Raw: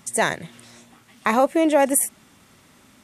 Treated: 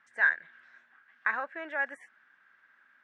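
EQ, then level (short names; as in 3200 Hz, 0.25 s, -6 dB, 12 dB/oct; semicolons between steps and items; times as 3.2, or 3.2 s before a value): band-pass 1600 Hz, Q 14; air absorption 120 m; +8.5 dB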